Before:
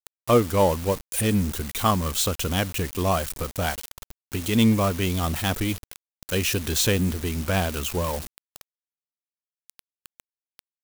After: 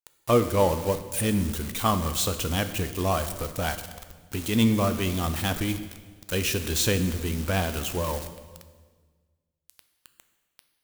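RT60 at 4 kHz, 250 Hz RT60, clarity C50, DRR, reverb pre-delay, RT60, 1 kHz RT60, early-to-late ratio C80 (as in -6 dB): 1.3 s, 1.8 s, 11.0 dB, 9.0 dB, 6 ms, 1.5 s, 1.4 s, 12.5 dB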